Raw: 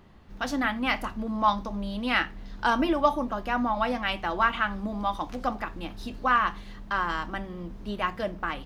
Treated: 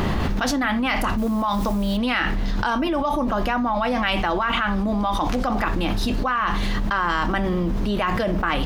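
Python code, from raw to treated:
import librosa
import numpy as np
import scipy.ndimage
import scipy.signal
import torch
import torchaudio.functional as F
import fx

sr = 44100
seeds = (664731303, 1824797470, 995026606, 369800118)

y = fx.dmg_noise_colour(x, sr, seeds[0], colour='white', level_db=-57.0, at=(1.17, 1.96), fade=0.02)
y = fx.env_flatten(y, sr, amount_pct=100)
y = F.gain(torch.from_numpy(y), -4.5).numpy()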